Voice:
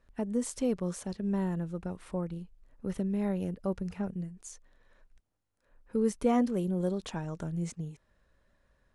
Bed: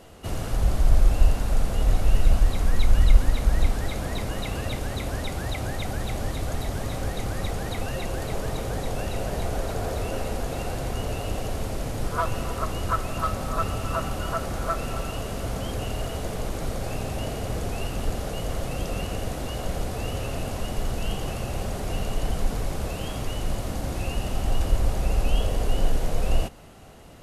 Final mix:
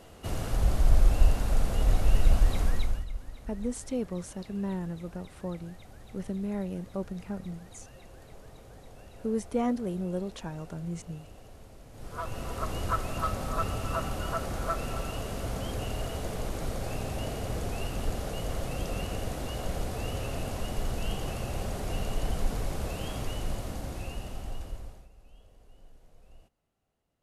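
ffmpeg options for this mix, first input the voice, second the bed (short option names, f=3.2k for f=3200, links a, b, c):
-filter_complex "[0:a]adelay=3300,volume=-2dB[a];[1:a]volume=14dB,afade=t=out:st=2.61:d=0.44:silence=0.125893,afade=t=in:st=11.9:d=0.85:silence=0.141254,afade=t=out:st=23.22:d=1.87:silence=0.0354813[b];[a][b]amix=inputs=2:normalize=0"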